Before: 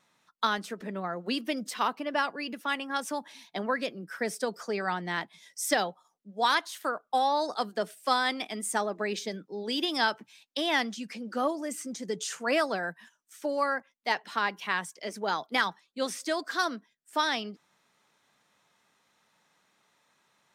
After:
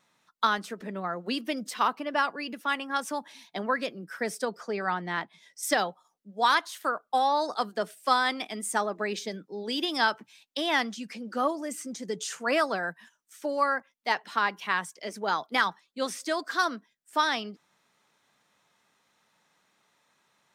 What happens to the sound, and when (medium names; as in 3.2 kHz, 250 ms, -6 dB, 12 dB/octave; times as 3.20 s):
4.45–5.63 s: treble shelf 5.5 kHz -10 dB
whole clip: dynamic bell 1.2 kHz, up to +4 dB, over -38 dBFS, Q 1.7